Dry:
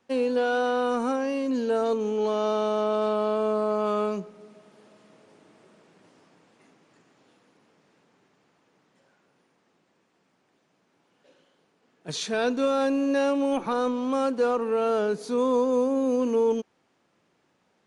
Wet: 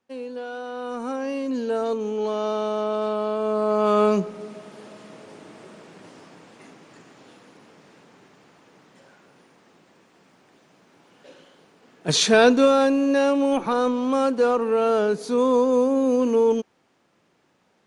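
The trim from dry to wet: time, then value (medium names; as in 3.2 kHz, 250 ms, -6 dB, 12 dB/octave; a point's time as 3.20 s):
0.66 s -9 dB
1.29 s 0 dB
3.39 s 0 dB
4.33 s +12 dB
12.31 s +12 dB
12.96 s +4 dB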